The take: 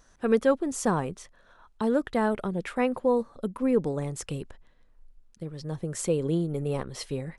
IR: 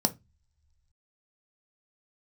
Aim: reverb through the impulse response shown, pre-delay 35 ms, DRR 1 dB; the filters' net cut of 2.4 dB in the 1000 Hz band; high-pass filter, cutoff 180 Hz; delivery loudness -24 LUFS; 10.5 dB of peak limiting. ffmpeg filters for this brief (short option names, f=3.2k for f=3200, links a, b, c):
-filter_complex "[0:a]highpass=180,equalizer=f=1k:t=o:g=-3,alimiter=limit=-22.5dB:level=0:latency=1,asplit=2[a][b];[1:a]atrim=start_sample=2205,adelay=35[c];[b][c]afir=irnorm=-1:irlink=0,volume=-9dB[d];[a][d]amix=inputs=2:normalize=0,volume=3dB"